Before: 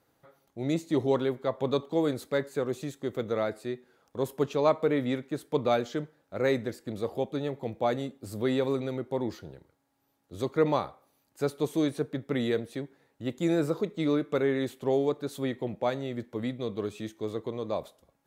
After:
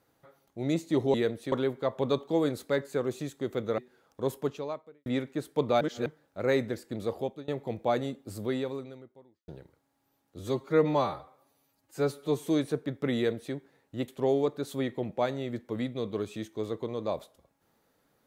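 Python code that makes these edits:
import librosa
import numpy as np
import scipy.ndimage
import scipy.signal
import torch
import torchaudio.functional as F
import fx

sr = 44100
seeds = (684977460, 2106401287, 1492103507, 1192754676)

y = fx.edit(x, sr, fx.cut(start_s=3.4, length_s=0.34),
    fx.fade_out_span(start_s=4.3, length_s=0.72, curve='qua'),
    fx.reverse_span(start_s=5.77, length_s=0.25),
    fx.fade_out_to(start_s=7.13, length_s=0.31, floor_db=-23.5),
    fx.fade_out_span(start_s=8.28, length_s=1.16, curve='qua'),
    fx.stretch_span(start_s=10.35, length_s=1.38, factor=1.5),
    fx.duplicate(start_s=12.43, length_s=0.38, to_s=1.14),
    fx.cut(start_s=13.35, length_s=1.37), tone=tone)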